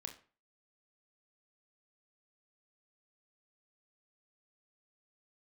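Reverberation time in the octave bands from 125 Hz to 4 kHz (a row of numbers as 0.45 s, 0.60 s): 0.40 s, 0.40 s, 0.40 s, 0.40 s, 0.35 s, 0.30 s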